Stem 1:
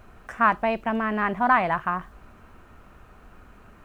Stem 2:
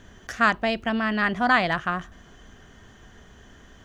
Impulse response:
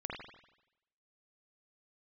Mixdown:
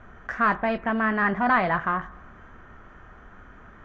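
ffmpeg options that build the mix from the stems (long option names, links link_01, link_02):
-filter_complex "[0:a]asoftclip=type=tanh:threshold=-23.5dB,lowpass=frequency=1800:width_type=q:width=2.9,volume=-1.5dB,asplit=2[link_01][link_02];[link_02]volume=-14.5dB[link_03];[1:a]flanger=delay=20:depth=5.6:speed=0.72,volume=-5.5dB[link_04];[2:a]atrim=start_sample=2205[link_05];[link_03][link_05]afir=irnorm=-1:irlink=0[link_06];[link_01][link_04][link_06]amix=inputs=3:normalize=0,aemphasis=mode=reproduction:type=75fm"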